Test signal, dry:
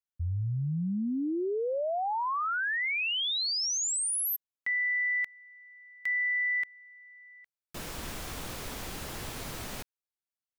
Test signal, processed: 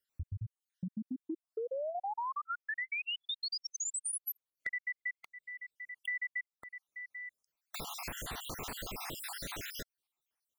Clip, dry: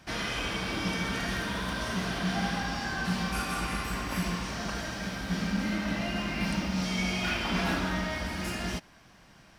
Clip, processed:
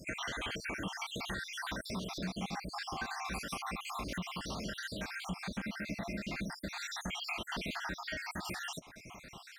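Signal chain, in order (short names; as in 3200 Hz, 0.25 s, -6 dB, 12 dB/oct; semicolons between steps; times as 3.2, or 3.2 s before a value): random spectral dropouts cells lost 64%; low shelf 280 Hz -4.5 dB; compressor 3:1, threshold -52 dBFS; gain +10.5 dB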